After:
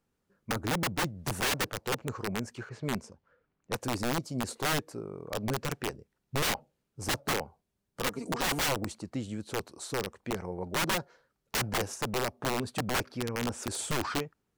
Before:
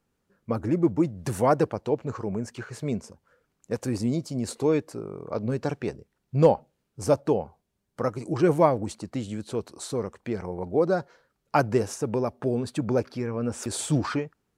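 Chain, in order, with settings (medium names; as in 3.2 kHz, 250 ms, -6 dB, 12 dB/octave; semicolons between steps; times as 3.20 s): 8.06–8.63 s: comb 4.3 ms, depth 92%; integer overflow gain 19.5 dB; 2.69–3.78 s: level-controlled noise filter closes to 2.5 kHz, open at -25.5 dBFS; trim -4 dB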